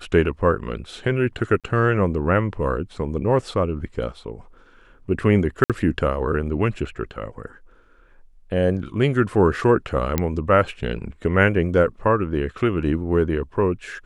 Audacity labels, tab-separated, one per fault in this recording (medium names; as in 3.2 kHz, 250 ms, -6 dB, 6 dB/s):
1.600000	1.640000	dropout 37 ms
5.640000	5.700000	dropout 57 ms
10.180000	10.180000	pop -6 dBFS